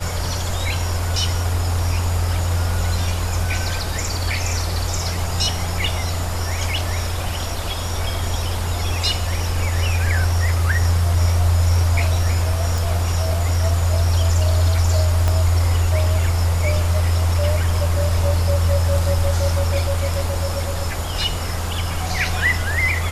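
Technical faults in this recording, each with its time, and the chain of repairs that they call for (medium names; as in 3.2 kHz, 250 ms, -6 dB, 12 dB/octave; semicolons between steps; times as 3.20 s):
12.78 s: pop
15.28 s: pop -7 dBFS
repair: de-click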